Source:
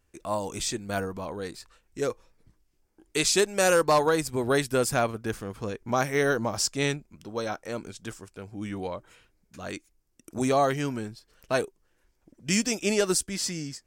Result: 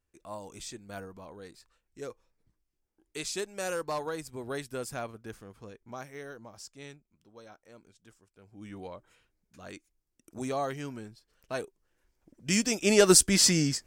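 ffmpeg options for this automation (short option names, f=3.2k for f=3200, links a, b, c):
-af "volume=16.5dB,afade=t=out:st=5.33:d=0.96:silence=0.398107,afade=t=in:st=8.32:d=0.44:silence=0.281838,afade=t=in:st=11.55:d=1.28:silence=0.375837,afade=t=in:st=12.83:d=0.45:silence=0.354813"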